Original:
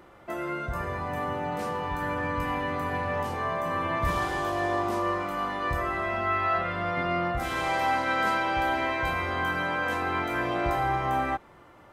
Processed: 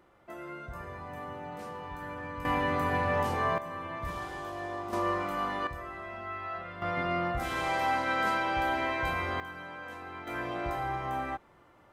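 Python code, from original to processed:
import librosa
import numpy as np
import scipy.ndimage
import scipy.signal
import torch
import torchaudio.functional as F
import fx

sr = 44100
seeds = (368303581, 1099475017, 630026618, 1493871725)

y = fx.gain(x, sr, db=fx.steps((0.0, -10.0), (2.45, 1.0), (3.58, -10.0), (4.93, -2.0), (5.67, -12.0), (6.82, -3.0), (9.4, -14.5), (10.27, -7.0)))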